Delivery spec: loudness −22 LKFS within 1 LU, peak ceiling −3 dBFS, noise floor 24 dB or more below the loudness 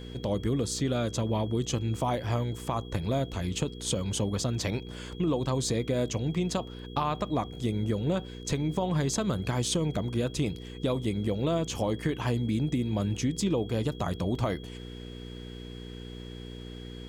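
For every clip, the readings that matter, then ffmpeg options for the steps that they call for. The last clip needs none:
mains hum 60 Hz; hum harmonics up to 480 Hz; level of the hum −39 dBFS; interfering tone 3,300 Hz; level of the tone −50 dBFS; integrated loudness −30.0 LKFS; sample peak −16.5 dBFS; target loudness −22.0 LKFS
→ -af "bandreject=frequency=60:width_type=h:width=4,bandreject=frequency=120:width_type=h:width=4,bandreject=frequency=180:width_type=h:width=4,bandreject=frequency=240:width_type=h:width=4,bandreject=frequency=300:width_type=h:width=4,bandreject=frequency=360:width_type=h:width=4,bandreject=frequency=420:width_type=h:width=4,bandreject=frequency=480:width_type=h:width=4"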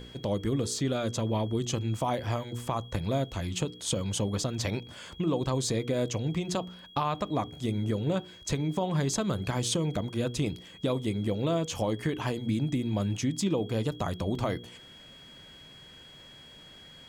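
mains hum none found; interfering tone 3,300 Hz; level of the tone −50 dBFS
→ -af "bandreject=frequency=3300:width=30"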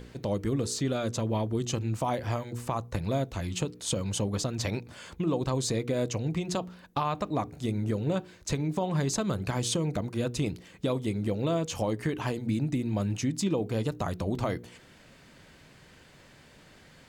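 interfering tone none found; integrated loudness −31.0 LKFS; sample peak −16.5 dBFS; target loudness −22.0 LKFS
→ -af "volume=9dB"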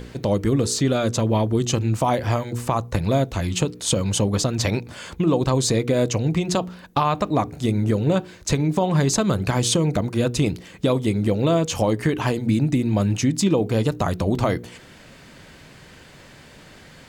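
integrated loudness −22.0 LKFS; sample peak −7.5 dBFS; background noise floor −47 dBFS

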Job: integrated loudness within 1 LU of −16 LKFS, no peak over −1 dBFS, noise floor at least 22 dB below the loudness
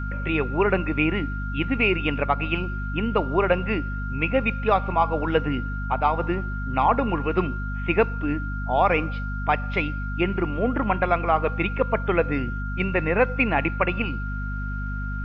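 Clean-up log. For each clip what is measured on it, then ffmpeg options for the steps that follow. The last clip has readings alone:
mains hum 50 Hz; hum harmonics up to 250 Hz; level of the hum −27 dBFS; interfering tone 1,400 Hz; level of the tone −34 dBFS; integrated loudness −24.0 LKFS; sample peak −7.0 dBFS; target loudness −16.0 LKFS
→ -af "bandreject=frequency=50:width_type=h:width=4,bandreject=frequency=100:width_type=h:width=4,bandreject=frequency=150:width_type=h:width=4,bandreject=frequency=200:width_type=h:width=4,bandreject=frequency=250:width_type=h:width=4"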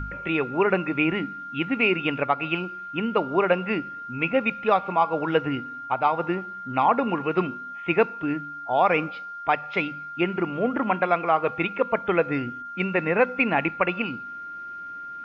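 mains hum none found; interfering tone 1,400 Hz; level of the tone −34 dBFS
→ -af "bandreject=frequency=1400:width=30"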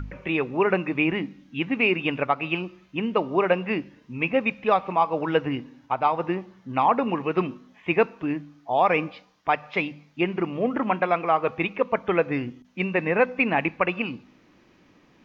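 interfering tone none found; integrated loudness −25.0 LKFS; sample peak −8.0 dBFS; target loudness −16.0 LKFS
→ -af "volume=9dB,alimiter=limit=-1dB:level=0:latency=1"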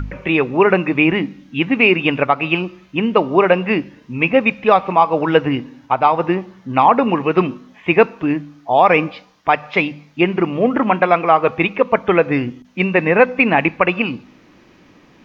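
integrated loudness −16.5 LKFS; sample peak −1.0 dBFS; background noise floor −49 dBFS

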